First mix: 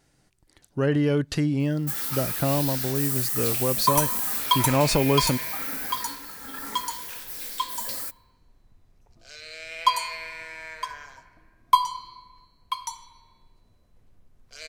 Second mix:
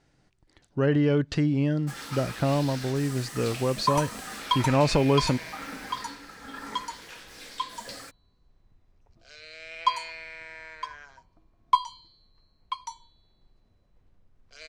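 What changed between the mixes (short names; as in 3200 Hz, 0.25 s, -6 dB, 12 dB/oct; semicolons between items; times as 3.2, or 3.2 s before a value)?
second sound: send off; master: add air absorption 91 m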